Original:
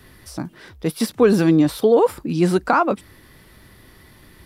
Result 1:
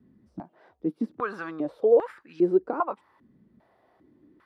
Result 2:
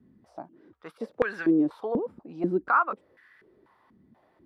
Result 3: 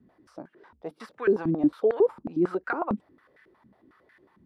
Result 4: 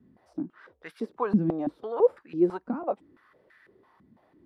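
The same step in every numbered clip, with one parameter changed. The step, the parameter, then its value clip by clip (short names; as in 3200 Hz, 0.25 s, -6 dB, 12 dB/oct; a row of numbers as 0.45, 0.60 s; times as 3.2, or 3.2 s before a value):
stepped band-pass, rate: 2.5, 4.1, 11, 6 Hz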